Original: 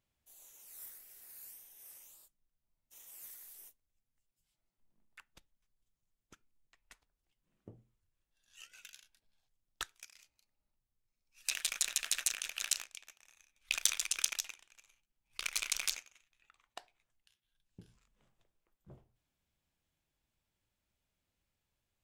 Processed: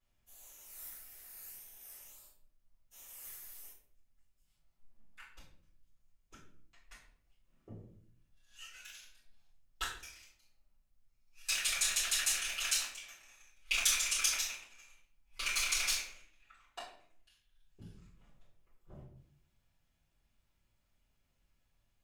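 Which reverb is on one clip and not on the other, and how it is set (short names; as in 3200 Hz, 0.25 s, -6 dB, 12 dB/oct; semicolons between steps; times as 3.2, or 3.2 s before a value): shoebox room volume 85 m³, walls mixed, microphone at 4.1 m; gain -10.5 dB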